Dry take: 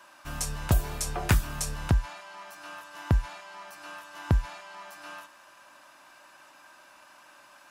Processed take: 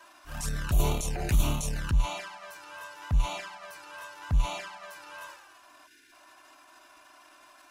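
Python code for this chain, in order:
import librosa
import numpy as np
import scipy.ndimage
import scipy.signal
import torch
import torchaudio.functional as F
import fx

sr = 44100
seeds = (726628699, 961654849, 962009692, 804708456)

y = fx.transient(x, sr, attack_db=-11, sustain_db=9)
y = fx.env_flanger(y, sr, rest_ms=3.3, full_db=-26.5)
y = fx.spec_box(y, sr, start_s=5.87, length_s=0.25, low_hz=480.0, high_hz=1400.0, gain_db=-22)
y = y * librosa.db_to_amplitude(2.5)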